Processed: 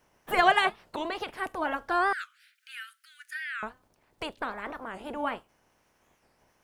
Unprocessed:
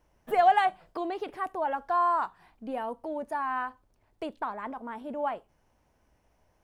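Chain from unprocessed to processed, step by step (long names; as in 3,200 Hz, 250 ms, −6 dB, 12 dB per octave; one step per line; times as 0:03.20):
ceiling on every frequency bin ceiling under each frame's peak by 18 dB
0:02.14–0:03.64: Butterworth high-pass 1,400 Hz 96 dB per octave
wow of a warped record 45 rpm, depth 250 cents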